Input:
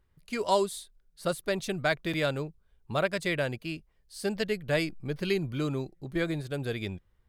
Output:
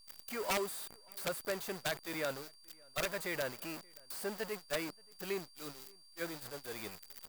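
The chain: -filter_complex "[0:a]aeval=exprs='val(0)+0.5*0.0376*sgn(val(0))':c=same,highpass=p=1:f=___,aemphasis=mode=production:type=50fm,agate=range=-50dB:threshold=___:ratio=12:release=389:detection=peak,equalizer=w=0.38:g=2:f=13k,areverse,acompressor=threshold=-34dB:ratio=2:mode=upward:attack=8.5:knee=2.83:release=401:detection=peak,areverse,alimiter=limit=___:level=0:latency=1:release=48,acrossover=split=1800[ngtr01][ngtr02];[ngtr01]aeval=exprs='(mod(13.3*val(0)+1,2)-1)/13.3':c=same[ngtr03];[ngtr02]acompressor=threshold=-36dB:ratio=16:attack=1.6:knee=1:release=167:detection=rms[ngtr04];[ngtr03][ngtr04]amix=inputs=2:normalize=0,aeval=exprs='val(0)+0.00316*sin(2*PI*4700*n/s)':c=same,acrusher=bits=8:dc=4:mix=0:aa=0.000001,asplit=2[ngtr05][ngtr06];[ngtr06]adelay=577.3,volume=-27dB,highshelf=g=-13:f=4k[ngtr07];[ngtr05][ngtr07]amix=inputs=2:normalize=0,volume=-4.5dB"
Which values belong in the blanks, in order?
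780, -26dB, -11.5dB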